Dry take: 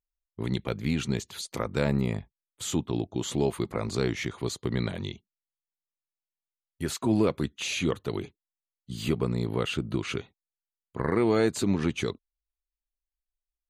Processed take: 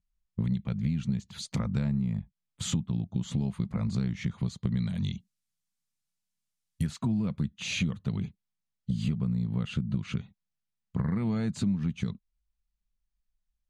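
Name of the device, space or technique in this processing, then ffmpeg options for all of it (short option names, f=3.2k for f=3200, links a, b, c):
jukebox: -filter_complex "[0:a]asettb=1/sr,asplit=3[a][b][c];[a]atrim=end=4.764[d];[b]atrim=start=4.76:end=6.87,asetpts=PTS-STARTPTS,afade=t=in:d=0.004:c=qsin,afade=t=out:st=2.106:d=0.004:c=qsin,aemphasis=mode=production:type=75kf[e];[c]atrim=start=6.866[f];[d][e]acrossfade=d=0.004:c1=hsin:c2=qsin[g];[g][f]acrossfade=d=0.004:c1=qsin:c2=hsin,lowpass=7.5k,lowshelf=f=260:t=q:w=3:g=10.5,acompressor=threshold=-28dB:ratio=6,volume=1dB"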